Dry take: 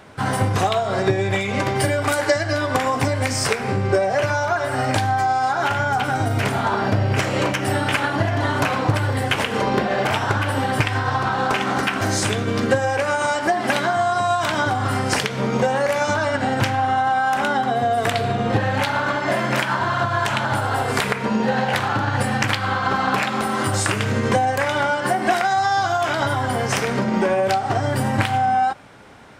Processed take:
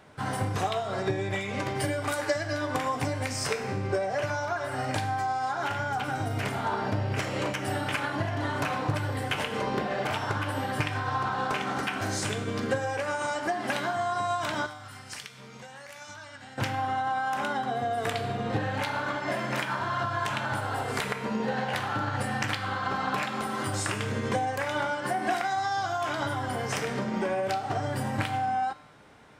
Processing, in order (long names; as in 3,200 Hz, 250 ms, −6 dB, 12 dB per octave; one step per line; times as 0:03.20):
0:14.66–0:16.58: guitar amp tone stack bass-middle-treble 5-5-5
tuned comb filter 150 Hz, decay 0.92 s, harmonics all, mix 70%